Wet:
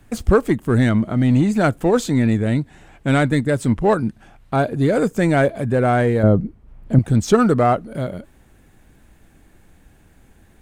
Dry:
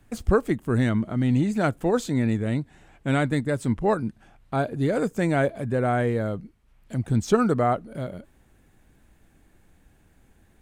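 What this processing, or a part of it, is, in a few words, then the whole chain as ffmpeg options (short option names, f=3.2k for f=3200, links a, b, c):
parallel distortion: -filter_complex "[0:a]asplit=2[a][b];[b]asoftclip=type=hard:threshold=-22dB,volume=-9dB[c];[a][c]amix=inputs=2:normalize=0,asettb=1/sr,asplit=3[d][e][f];[d]atrim=end=6.234[g];[e]atrim=start=6.23:end=6.99,asetpts=PTS-STARTPTS,afade=t=in:d=0.004:c=qsin,afade=t=out:st=0.756:d=0.004:c=qsin,tiltshelf=f=1.4k:g=9.5[h];[f]atrim=start=6.986[i];[g][h]acrossfade=d=0.004:c1=hsin:c2=qsin[j];[j][i]acrossfade=d=0.004:c1=qsin:c2=hsin,volume=4.5dB"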